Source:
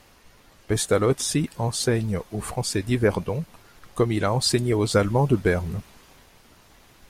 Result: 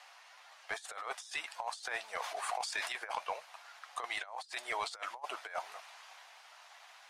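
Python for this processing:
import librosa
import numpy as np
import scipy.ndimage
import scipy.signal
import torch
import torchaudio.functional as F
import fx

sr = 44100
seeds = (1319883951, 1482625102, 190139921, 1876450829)

y = scipy.signal.sosfilt(scipy.signal.cheby1(4, 1.0, 700.0, 'highpass', fs=sr, output='sos'), x)
y = fx.over_compress(y, sr, threshold_db=-35.0, ratio=-0.5)
y = np.clip(y, -10.0 ** (-24.0 / 20.0), 10.0 ** (-24.0 / 20.0))
y = fx.air_absorb(y, sr, metres=59.0)
y = fx.sustainer(y, sr, db_per_s=43.0, at=(2.15, 2.87), fade=0.02)
y = y * librosa.db_to_amplitude(-3.0)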